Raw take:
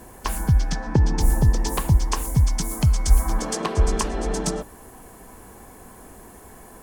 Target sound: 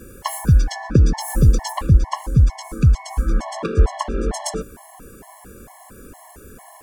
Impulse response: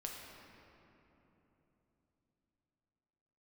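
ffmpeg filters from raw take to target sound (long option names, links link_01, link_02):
-filter_complex "[0:a]asplit=3[link_01][link_02][link_03];[link_01]afade=type=out:start_time=1.71:duration=0.02[link_04];[link_02]aemphasis=mode=reproduction:type=75kf,afade=type=in:start_time=1.71:duration=0.02,afade=type=out:start_time=4.32:duration=0.02[link_05];[link_03]afade=type=in:start_time=4.32:duration=0.02[link_06];[link_04][link_05][link_06]amix=inputs=3:normalize=0,afftfilt=real='re*gt(sin(2*PI*2.2*pts/sr)*(1-2*mod(floor(b*sr/1024/560),2)),0)':imag='im*gt(sin(2*PI*2.2*pts/sr)*(1-2*mod(floor(b*sr/1024/560),2)),0)':win_size=1024:overlap=0.75,volume=5dB"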